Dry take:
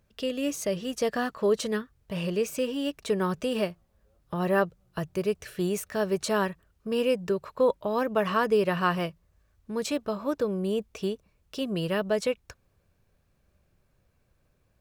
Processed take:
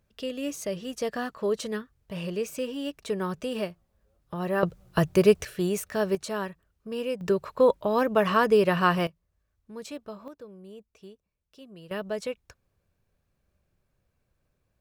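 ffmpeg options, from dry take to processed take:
-af "asetnsamples=n=441:p=0,asendcmd='4.63 volume volume 9dB;5.45 volume volume 1dB;6.15 volume volume -5.5dB;7.21 volume volume 3dB;9.07 volume volume -9.5dB;10.28 volume volume -17.5dB;11.91 volume volume -5.5dB',volume=-3dB"

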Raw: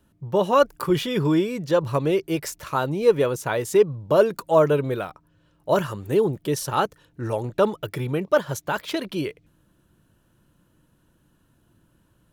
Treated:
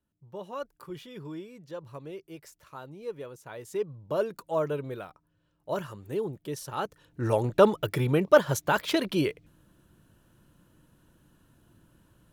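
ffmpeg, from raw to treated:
-af "volume=1dB,afade=t=in:st=3.44:d=0.65:silence=0.375837,afade=t=in:st=6.78:d=0.55:silence=0.251189"

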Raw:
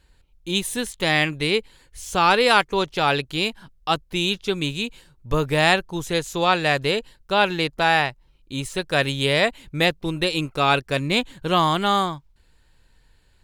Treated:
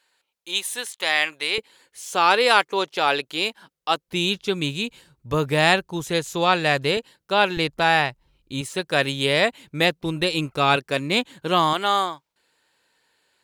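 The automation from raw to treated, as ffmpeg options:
-af "asetnsamples=n=441:p=0,asendcmd='1.58 highpass f 330;4.08 highpass f 80;6.97 highpass f 190;7.57 highpass f 49;8.61 highpass f 150;10.03 highpass f 51;10.76 highpass f 180;11.73 highpass f 390',highpass=690"

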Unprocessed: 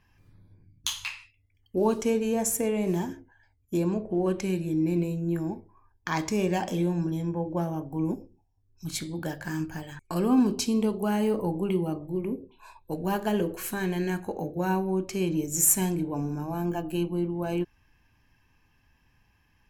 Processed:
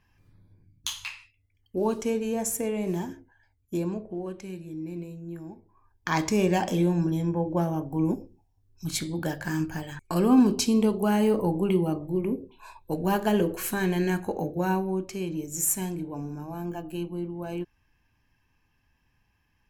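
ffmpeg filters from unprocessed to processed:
-af "volume=11dB,afade=t=out:st=3.75:d=0.56:silence=0.398107,afade=t=in:st=5.56:d=0.59:silence=0.223872,afade=t=out:st=14.36:d=0.87:silence=0.421697"

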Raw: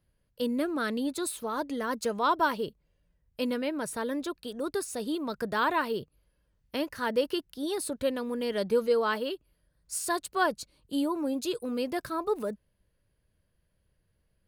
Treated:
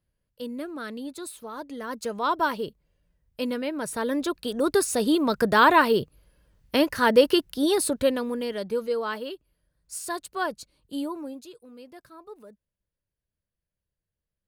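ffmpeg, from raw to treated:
-af "volume=10dB,afade=t=in:st=1.64:d=0.79:silence=0.473151,afade=t=in:st=3.75:d=1.05:silence=0.375837,afade=t=out:st=7.63:d=0.97:silence=0.251189,afade=t=out:st=11.06:d=0.44:silence=0.223872"

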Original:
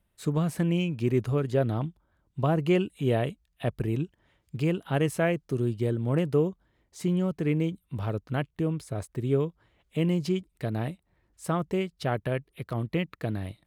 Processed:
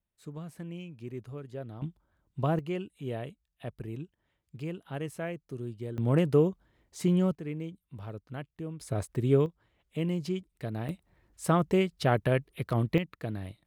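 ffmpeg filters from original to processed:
-af "asetnsamples=n=441:p=0,asendcmd='1.82 volume volume -3dB;2.59 volume volume -10.5dB;5.98 volume volume 1dB;7.35 volume volume -10.5dB;8.81 volume volume 1.5dB;9.46 volume volume -5dB;10.89 volume volume 3dB;12.98 volume volume -4.5dB',volume=-15dB"

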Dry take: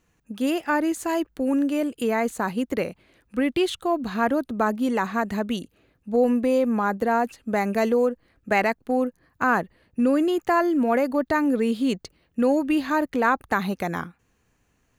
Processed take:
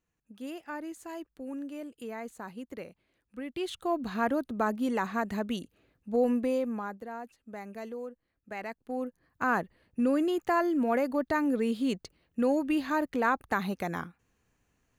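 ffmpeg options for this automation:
-af "volume=6.5dB,afade=t=in:st=3.5:d=0.4:silence=0.316228,afade=t=out:st=6.36:d=0.66:silence=0.237137,afade=t=in:st=8.57:d=1.01:silence=0.237137"

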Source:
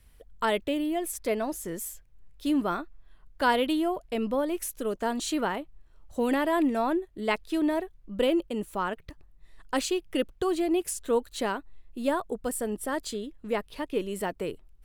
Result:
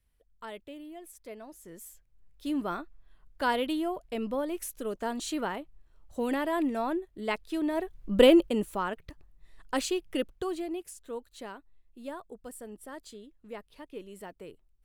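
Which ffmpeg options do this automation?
-af "volume=8dB,afade=t=in:st=1.51:d=1.27:silence=0.251189,afade=t=in:st=7.73:d=0.4:silence=0.251189,afade=t=out:st=8.13:d=0.69:silence=0.316228,afade=t=out:st=10.07:d=0.8:silence=0.281838"

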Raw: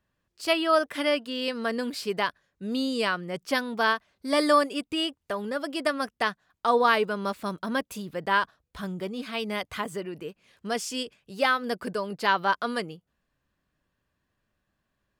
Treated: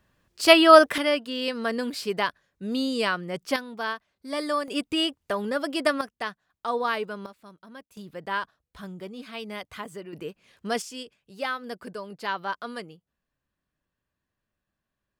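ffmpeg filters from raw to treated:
-af "asetnsamples=n=441:p=0,asendcmd='0.98 volume volume 1dB;3.56 volume volume -6.5dB;4.68 volume volume 3dB;6.01 volume volume -5.5dB;7.26 volume volume -17dB;7.97 volume volume -5.5dB;10.13 volume volume 1.5dB;10.82 volume volume -6.5dB',volume=9.5dB"

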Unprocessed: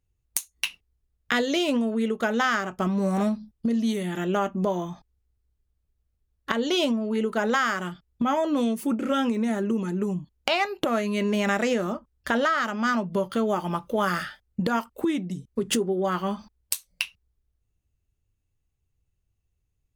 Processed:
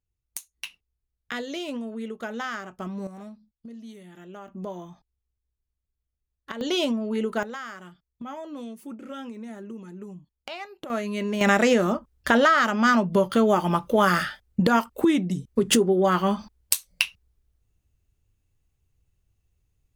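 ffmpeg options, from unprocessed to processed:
-af "asetnsamples=n=441:p=0,asendcmd='3.07 volume volume -17.5dB;4.48 volume volume -9.5dB;6.61 volume volume -1dB;7.43 volume volume -13dB;10.9 volume volume -3dB;11.41 volume volume 5dB',volume=-8.5dB"

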